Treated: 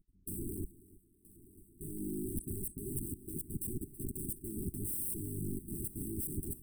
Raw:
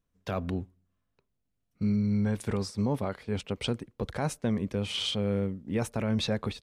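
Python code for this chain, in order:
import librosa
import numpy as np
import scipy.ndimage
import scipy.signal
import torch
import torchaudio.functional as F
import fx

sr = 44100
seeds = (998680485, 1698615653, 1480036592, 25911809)

y = fx.octave_divider(x, sr, octaves=2, level_db=2.0)
y = fx.high_shelf(y, sr, hz=7800.0, db=-4.0)
y = fx.level_steps(y, sr, step_db=19)
y = fx.dereverb_blind(y, sr, rt60_s=1.5)
y = (np.mod(10.0 ** (42.0 / 20.0) * y + 1.0, 2.0) - 1.0) / 10.0 ** (42.0 / 20.0)
y = fx.brickwall_bandstop(y, sr, low_hz=410.0, high_hz=7900.0)
y = fx.echo_heads(y, sr, ms=325, heads='first and third', feedback_pct=67, wet_db=-20.0)
y = F.gain(torch.from_numpy(y), 11.5).numpy()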